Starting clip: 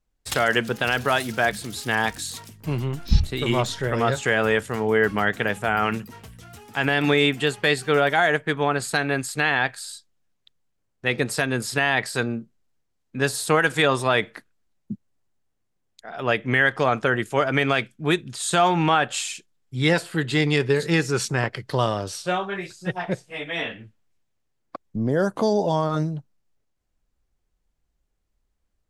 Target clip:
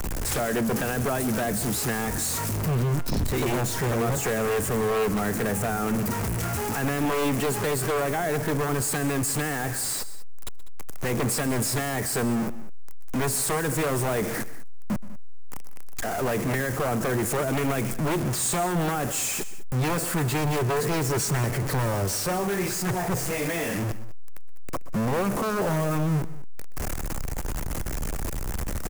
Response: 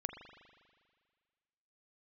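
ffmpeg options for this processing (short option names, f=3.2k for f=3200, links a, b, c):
-filter_complex "[0:a]aeval=exprs='val(0)+0.5*0.106*sgn(val(0))':c=same,equalizer=f=3.6k:w=1.3:g=-10.5,acrossover=split=270|530|5900[a][b][c][d];[c]acompressor=threshold=-28dB:ratio=6[e];[a][b][e][d]amix=inputs=4:normalize=0,aeval=exprs='0.133*(abs(mod(val(0)/0.133+3,4)-2)-1)':c=same,aecho=1:1:125|197:0.126|0.133,volume=-2dB"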